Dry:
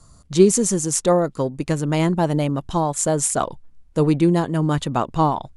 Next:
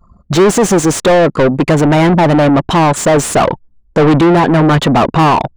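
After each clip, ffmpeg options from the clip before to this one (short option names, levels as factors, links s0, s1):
-filter_complex "[0:a]tiltshelf=f=690:g=3,asplit=2[s0][s1];[s1]highpass=f=720:p=1,volume=70.8,asoftclip=type=tanh:threshold=1[s2];[s0][s2]amix=inputs=2:normalize=0,lowpass=f=1900:p=1,volume=0.501,anlmdn=2510,volume=0.891"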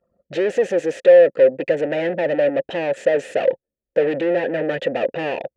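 -filter_complex "[0:a]asplit=3[s0][s1][s2];[s0]bandpass=f=530:t=q:w=8,volume=1[s3];[s1]bandpass=f=1840:t=q:w=8,volume=0.501[s4];[s2]bandpass=f=2480:t=q:w=8,volume=0.355[s5];[s3][s4][s5]amix=inputs=3:normalize=0,volume=1.19"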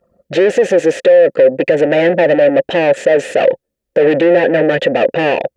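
-af "alimiter=level_in=3.76:limit=0.891:release=50:level=0:latency=1,volume=0.891"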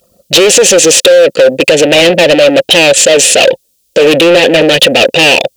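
-af "aexciter=amount=12.9:drive=3:freq=2700,asoftclip=type=hard:threshold=0.473,volume=1.88"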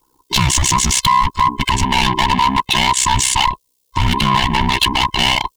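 -af "afftfilt=real='real(if(between(b,1,1008),(2*floor((b-1)/24)+1)*24-b,b),0)':imag='imag(if(between(b,1,1008),(2*floor((b-1)/24)+1)*24-b,b),0)*if(between(b,1,1008),-1,1)':win_size=2048:overlap=0.75,aeval=exprs='val(0)*sin(2*PI*32*n/s)':c=same,volume=0.501"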